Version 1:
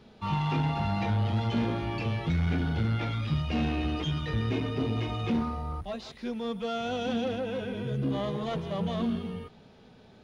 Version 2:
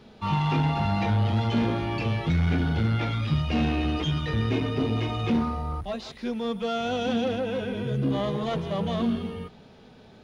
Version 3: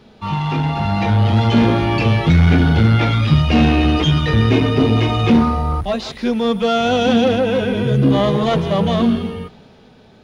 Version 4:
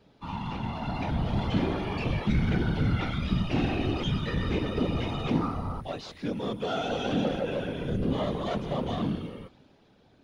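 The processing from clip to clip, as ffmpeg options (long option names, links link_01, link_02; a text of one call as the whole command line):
ffmpeg -i in.wav -af "bandreject=frequency=60:width_type=h:width=6,bandreject=frequency=120:width_type=h:width=6,bandreject=frequency=180:width_type=h:width=6,volume=4dB" out.wav
ffmpeg -i in.wav -af "dynaudnorm=framelen=110:gausssize=21:maxgain=8dB,volume=4dB" out.wav
ffmpeg -i in.wav -af "afftfilt=real='hypot(re,im)*cos(2*PI*random(0))':imag='hypot(re,im)*sin(2*PI*random(1))':win_size=512:overlap=0.75,volume=-8dB" out.wav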